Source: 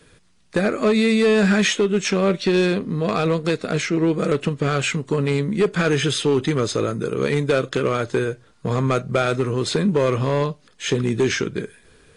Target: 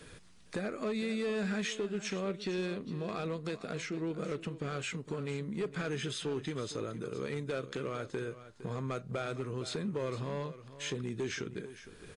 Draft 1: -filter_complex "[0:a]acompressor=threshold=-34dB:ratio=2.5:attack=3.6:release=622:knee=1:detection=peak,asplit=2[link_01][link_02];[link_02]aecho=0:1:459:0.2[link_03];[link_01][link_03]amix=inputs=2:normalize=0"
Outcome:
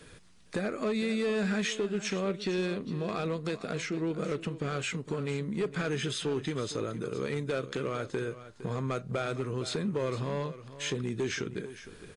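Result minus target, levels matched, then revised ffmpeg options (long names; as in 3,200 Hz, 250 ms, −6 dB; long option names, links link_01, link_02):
downward compressor: peak gain reduction −4 dB
-filter_complex "[0:a]acompressor=threshold=-41dB:ratio=2.5:attack=3.6:release=622:knee=1:detection=peak,asplit=2[link_01][link_02];[link_02]aecho=0:1:459:0.2[link_03];[link_01][link_03]amix=inputs=2:normalize=0"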